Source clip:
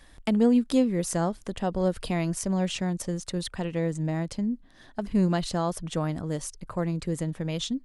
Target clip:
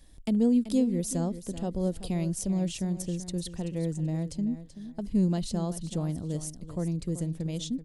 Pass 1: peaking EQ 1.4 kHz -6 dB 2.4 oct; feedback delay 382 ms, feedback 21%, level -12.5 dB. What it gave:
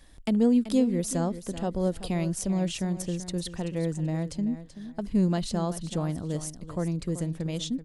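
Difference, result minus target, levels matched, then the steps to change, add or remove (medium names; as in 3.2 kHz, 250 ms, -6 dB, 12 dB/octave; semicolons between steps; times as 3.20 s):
1 kHz band +4.5 dB
change: peaking EQ 1.4 kHz -15 dB 2.4 oct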